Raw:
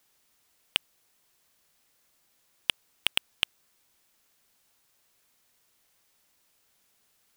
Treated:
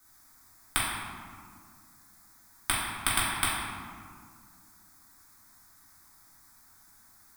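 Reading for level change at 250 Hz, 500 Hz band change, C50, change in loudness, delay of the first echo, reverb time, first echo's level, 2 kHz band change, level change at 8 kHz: +12.5 dB, +4.5 dB, −1.0 dB, +1.0 dB, no echo audible, 1.9 s, no echo audible, +3.5 dB, +10.5 dB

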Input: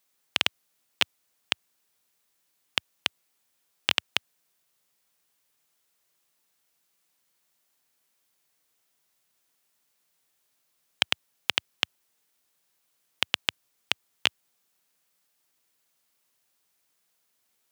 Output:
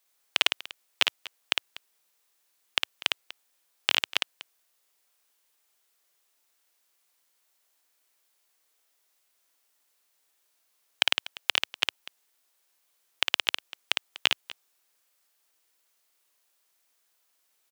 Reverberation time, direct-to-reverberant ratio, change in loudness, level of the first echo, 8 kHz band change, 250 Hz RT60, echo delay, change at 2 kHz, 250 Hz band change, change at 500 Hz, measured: no reverb audible, no reverb audible, +1.0 dB, −4.0 dB, +1.5 dB, no reverb audible, 56 ms, +1.5 dB, −4.5 dB, +0.5 dB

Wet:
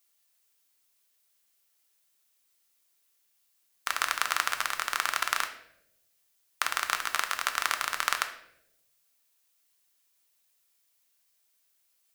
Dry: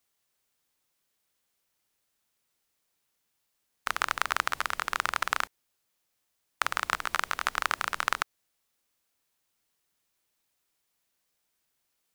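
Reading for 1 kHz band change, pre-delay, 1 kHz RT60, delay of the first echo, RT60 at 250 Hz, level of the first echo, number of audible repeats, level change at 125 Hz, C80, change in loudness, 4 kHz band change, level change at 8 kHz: −1.0 dB, 3 ms, 0.65 s, no echo audible, 1.2 s, no echo audible, no echo audible, can't be measured, 13.0 dB, +1.0 dB, +3.0 dB, +5.5 dB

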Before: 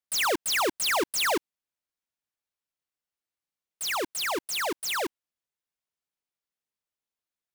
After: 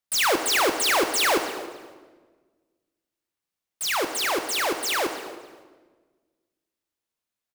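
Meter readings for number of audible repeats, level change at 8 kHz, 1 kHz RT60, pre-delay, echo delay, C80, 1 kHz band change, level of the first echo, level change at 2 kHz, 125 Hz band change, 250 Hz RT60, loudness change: 2, +4.0 dB, 1.3 s, 14 ms, 282 ms, 9.0 dB, +4.5 dB, −18.5 dB, +4.5 dB, +5.0 dB, 1.9 s, +4.5 dB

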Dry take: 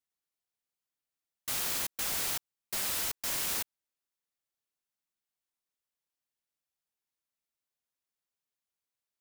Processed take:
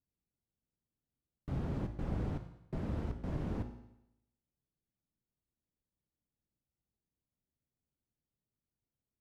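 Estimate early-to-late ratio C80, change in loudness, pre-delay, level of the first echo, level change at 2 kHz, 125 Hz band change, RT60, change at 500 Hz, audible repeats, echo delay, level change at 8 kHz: 12.0 dB, −8.5 dB, 17 ms, no echo audible, −16.5 dB, +16.5 dB, 0.85 s, +2.5 dB, no echo audible, no echo audible, below −35 dB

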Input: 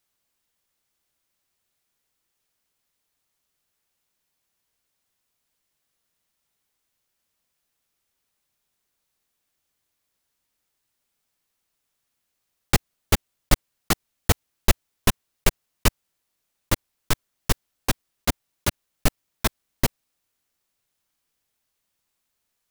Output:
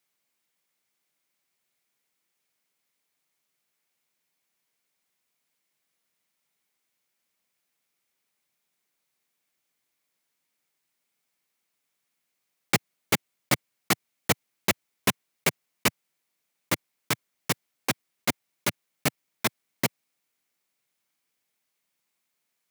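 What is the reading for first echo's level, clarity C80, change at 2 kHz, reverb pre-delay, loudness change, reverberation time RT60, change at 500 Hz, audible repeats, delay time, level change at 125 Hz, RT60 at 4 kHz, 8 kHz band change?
no echo audible, no reverb audible, +1.0 dB, no reverb audible, −2.5 dB, no reverb audible, −2.0 dB, no echo audible, no echo audible, −8.0 dB, no reverb audible, −2.0 dB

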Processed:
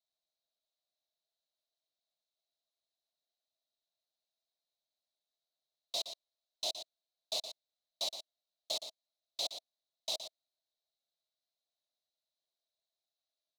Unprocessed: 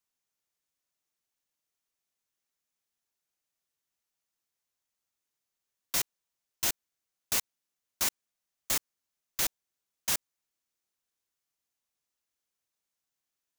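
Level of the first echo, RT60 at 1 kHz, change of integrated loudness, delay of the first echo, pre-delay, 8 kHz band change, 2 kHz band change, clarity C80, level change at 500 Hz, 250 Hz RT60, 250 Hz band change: −10.0 dB, no reverb audible, −8.0 dB, 118 ms, no reverb audible, −13.0 dB, −17.0 dB, no reverb audible, +1.5 dB, no reverb audible, −15.5 dB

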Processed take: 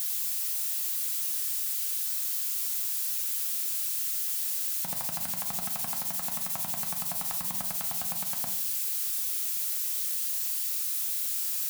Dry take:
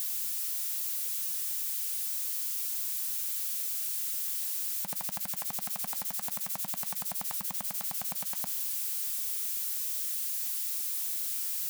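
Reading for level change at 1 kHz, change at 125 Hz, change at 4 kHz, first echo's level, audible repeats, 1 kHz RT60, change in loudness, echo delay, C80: +3.0 dB, +5.5 dB, +3.0 dB, no echo audible, no echo audible, 0.45 s, +3.0 dB, no echo audible, 14.0 dB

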